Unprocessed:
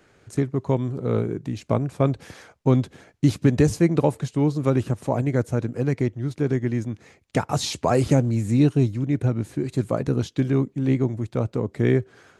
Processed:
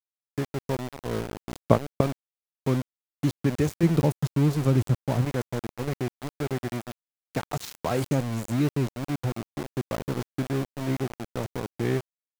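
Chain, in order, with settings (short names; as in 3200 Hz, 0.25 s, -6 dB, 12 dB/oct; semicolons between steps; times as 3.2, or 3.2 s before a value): 1.55–2.01 transient shaper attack +12 dB, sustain -5 dB; 3.83–5.25 tone controls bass +9 dB, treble +4 dB; sample gate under -22.5 dBFS; gain -6.5 dB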